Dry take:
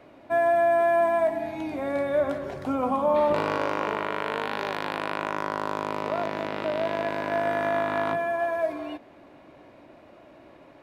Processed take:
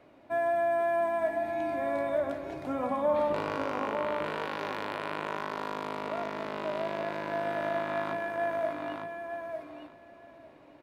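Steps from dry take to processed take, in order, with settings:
repeating echo 904 ms, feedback 16%, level −5.5 dB
level −6.5 dB

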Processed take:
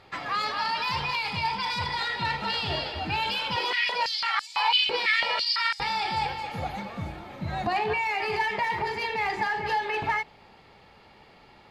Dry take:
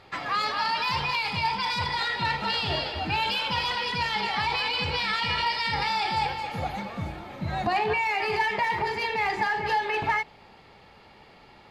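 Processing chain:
0:03.56–0:05.80: high-pass on a step sequencer 6 Hz 380–7,100 Hz
level −1.5 dB

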